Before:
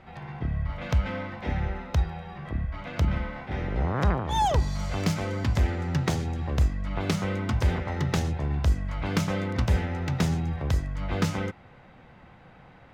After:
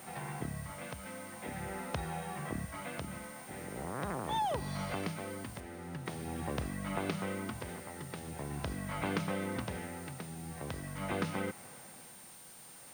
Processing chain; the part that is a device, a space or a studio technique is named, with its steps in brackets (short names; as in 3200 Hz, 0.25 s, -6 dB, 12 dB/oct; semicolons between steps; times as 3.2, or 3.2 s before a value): medium wave at night (BPF 170–3900 Hz; compressor, threshold -32 dBFS, peak gain reduction 10.5 dB; tremolo 0.44 Hz, depth 70%; whine 9000 Hz -55 dBFS; white noise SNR 17 dB); 5.6–6.06 high shelf 3700 Hz -8.5 dB; gain +1 dB